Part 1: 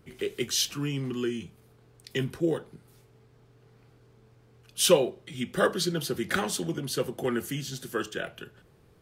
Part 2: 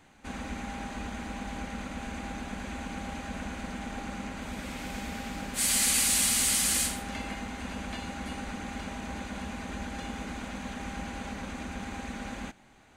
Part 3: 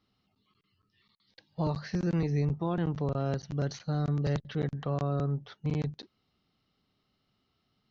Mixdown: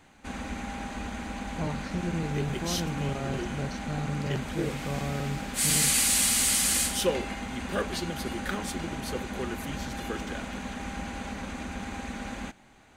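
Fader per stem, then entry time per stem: −6.5, +1.5, −3.0 decibels; 2.15, 0.00, 0.00 seconds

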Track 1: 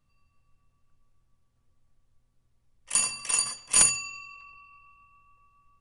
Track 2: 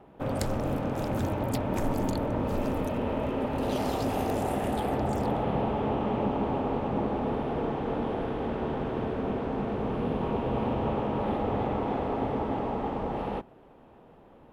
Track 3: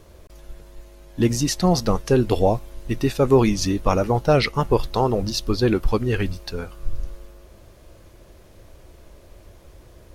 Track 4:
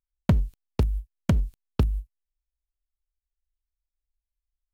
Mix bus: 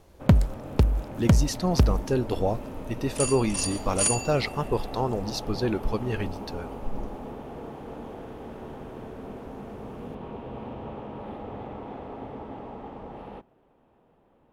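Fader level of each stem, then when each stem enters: −5.0, −9.0, −7.5, +3.0 decibels; 0.25, 0.00, 0.00, 0.00 seconds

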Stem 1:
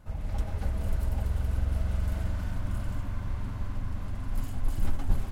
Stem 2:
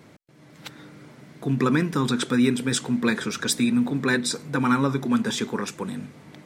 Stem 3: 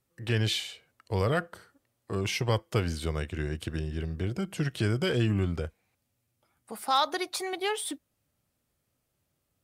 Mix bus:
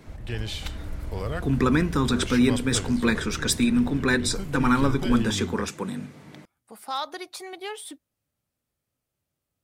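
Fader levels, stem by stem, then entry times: −5.5, 0.0, −5.0 decibels; 0.00, 0.00, 0.00 seconds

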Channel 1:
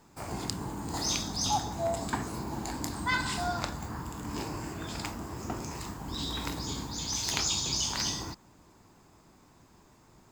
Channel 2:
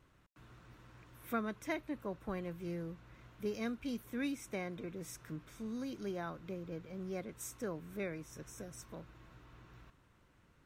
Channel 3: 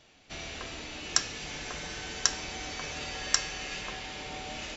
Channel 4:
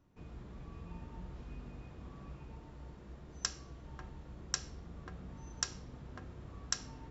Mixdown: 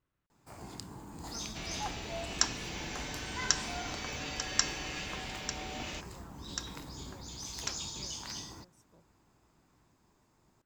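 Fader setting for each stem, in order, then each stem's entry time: −10.5, −16.0, −2.5, −3.0 decibels; 0.30, 0.00, 1.25, 0.95 seconds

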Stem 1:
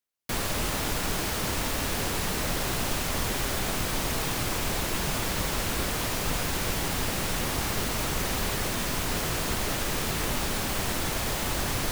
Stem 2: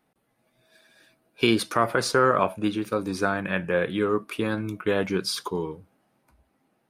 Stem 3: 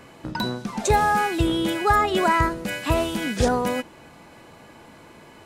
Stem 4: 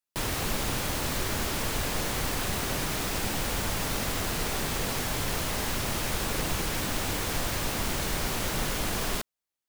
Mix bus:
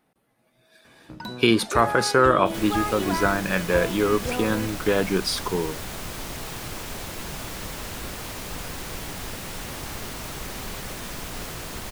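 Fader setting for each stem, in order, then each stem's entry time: −6.0, +2.5, −9.0, −13.5 decibels; 2.25, 0.00, 0.85, 2.30 seconds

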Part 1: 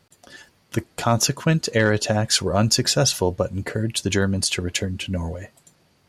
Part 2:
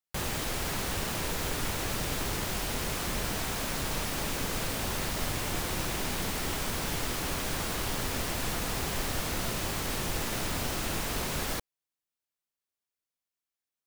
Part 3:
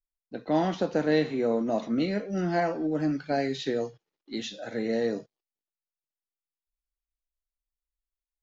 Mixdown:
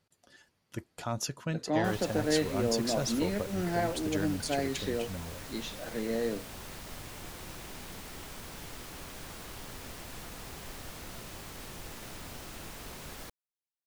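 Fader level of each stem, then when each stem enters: −15.0, −12.0, −4.5 decibels; 0.00, 1.70, 1.20 seconds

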